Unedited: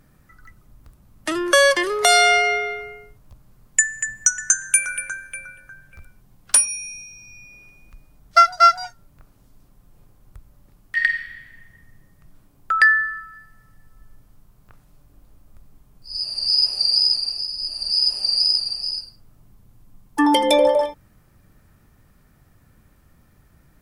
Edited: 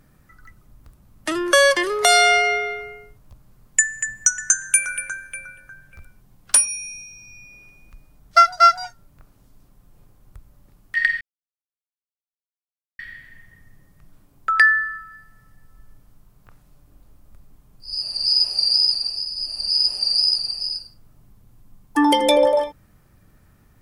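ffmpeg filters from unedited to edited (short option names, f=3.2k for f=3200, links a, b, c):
-filter_complex "[0:a]asplit=2[a][b];[a]atrim=end=11.21,asetpts=PTS-STARTPTS,afade=t=out:st=11.206:d=0.004:c=hsin,apad=pad_dur=1.78[c];[b]atrim=start=11.21,asetpts=PTS-STARTPTS,afade=t=in:d=0.004:c=hsin[d];[c][d]concat=n=2:v=0:a=1"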